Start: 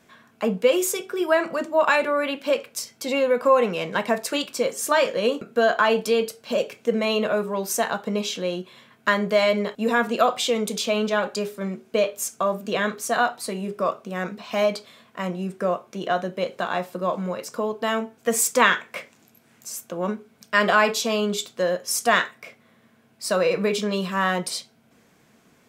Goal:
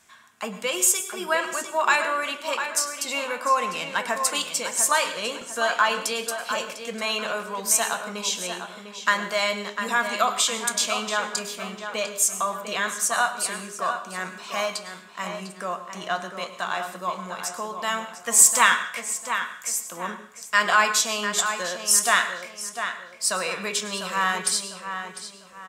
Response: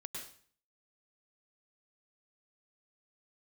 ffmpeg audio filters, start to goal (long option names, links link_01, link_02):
-filter_complex "[0:a]equalizer=frequency=125:width_type=o:width=1:gain=-10,equalizer=frequency=250:width_type=o:width=1:gain=-8,equalizer=frequency=500:width_type=o:width=1:gain=-11,equalizer=frequency=1000:width_type=o:width=1:gain=3,equalizer=frequency=8000:width_type=o:width=1:gain=10,asplit=2[link_01][link_02];[link_02]adelay=700,lowpass=frequency=3600:poles=1,volume=-8dB,asplit=2[link_03][link_04];[link_04]adelay=700,lowpass=frequency=3600:poles=1,volume=0.35,asplit=2[link_05][link_06];[link_06]adelay=700,lowpass=frequency=3600:poles=1,volume=0.35,asplit=2[link_07][link_08];[link_08]adelay=700,lowpass=frequency=3600:poles=1,volume=0.35[link_09];[link_01][link_03][link_05][link_07][link_09]amix=inputs=5:normalize=0,asplit=2[link_10][link_11];[1:a]atrim=start_sample=2205[link_12];[link_11][link_12]afir=irnorm=-1:irlink=0,volume=-5dB[link_13];[link_10][link_13]amix=inputs=2:normalize=0,volume=-2.5dB"